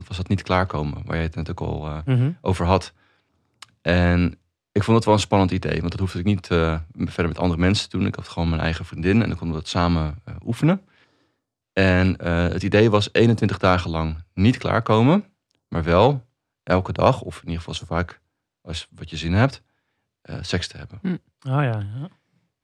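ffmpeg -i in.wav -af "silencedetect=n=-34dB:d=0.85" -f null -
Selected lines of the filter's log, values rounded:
silence_start: 10.77
silence_end: 11.77 | silence_duration: 0.99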